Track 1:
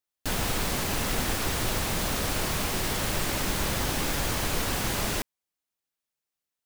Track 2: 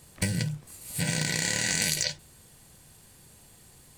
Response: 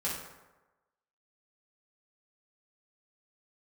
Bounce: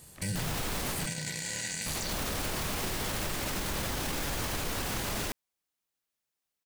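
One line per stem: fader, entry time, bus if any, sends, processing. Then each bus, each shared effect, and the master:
+1.0 dB, 0.10 s, muted 1.06–1.86 s, no send, none
-0.5 dB, 0.00 s, no send, treble shelf 7.8 kHz +5 dB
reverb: none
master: peak limiter -24 dBFS, peak gain reduction 14 dB

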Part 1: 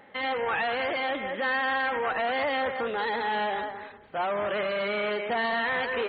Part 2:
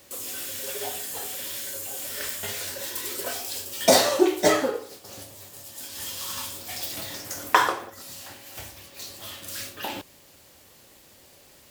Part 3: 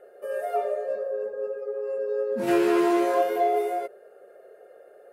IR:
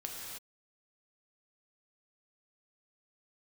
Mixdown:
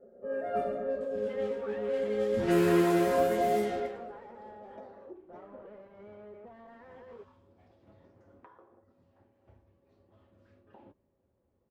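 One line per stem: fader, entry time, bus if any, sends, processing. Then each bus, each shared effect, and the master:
-10.0 dB, 1.15 s, no send, saturation -32.5 dBFS, distortion -9 dB
-13.5 dB, 0.90 s, no send, compression 12:1, threshold -30 dBFS, peak gain reduction 18.5 dB
-5.5 dB, 0.00 s, send -4 dB, octave divider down 1 oct, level -2 dB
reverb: on, pre-delay 3 ms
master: level-controlled noise filter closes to 590 Hz, open at -21 dBFS; peaking EQ 720 Hz -4 dB 0.34 oct; comb of notches 150 Hz

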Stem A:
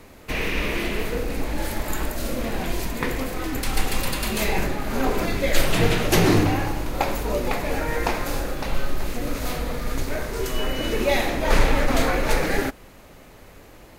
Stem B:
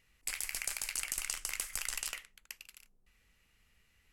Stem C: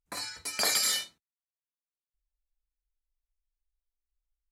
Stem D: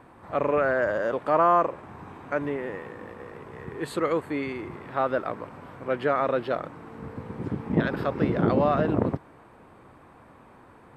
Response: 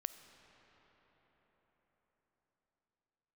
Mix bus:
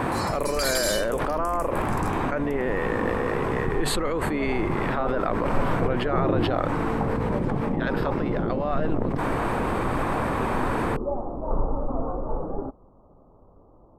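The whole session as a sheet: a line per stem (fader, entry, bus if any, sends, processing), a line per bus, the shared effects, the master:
-6.5 dB, 0.00 s, no send, steep low-pass 1.2 kHz 72 dB/octave
-7.0 dB, 0.00 s, no send, stepped phaser 4.2 Hz 640–2300 Hz
-1.0 dB, 0.00 s, no send, none
-8.5 dB, 0.00 s, no send, level flattener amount 100%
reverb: none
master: none

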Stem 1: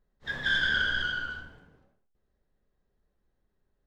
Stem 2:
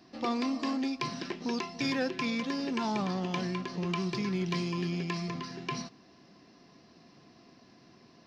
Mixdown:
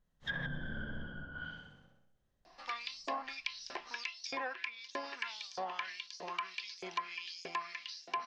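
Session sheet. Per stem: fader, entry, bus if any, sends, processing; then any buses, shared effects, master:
-3.5 dB, 0.00 s, no send, echo send -4 dB, graphic EQ with 31 bands 160 Hz +7 dB, 400 Hz -9 dB, 3.15 kHz +7 dB, 6.3 kHz +6 dB
-3.0 dB, 2.45 s, no send, no echo send, band-stop 1.3 kHz, Q 27; LFO high-pass saw up 1.6 Hz 570–6800 Hz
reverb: none
echo: feedback delay 64 ms, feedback 57%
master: low-pass that closes with the level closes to 550 Hz, closed at -29 dBFS

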